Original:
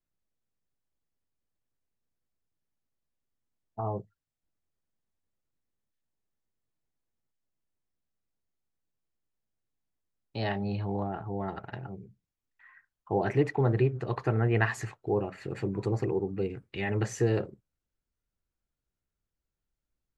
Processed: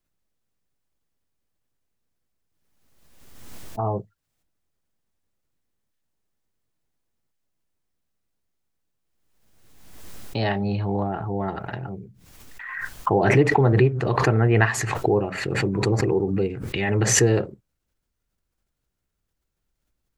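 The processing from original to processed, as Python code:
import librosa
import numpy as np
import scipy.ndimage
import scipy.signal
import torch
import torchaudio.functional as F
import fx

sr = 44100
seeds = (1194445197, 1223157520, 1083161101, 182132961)

y = fx.pre_swell(x, sr, db_per_s=38.0)
y = y * librosa.db_to_amplitude(7.0)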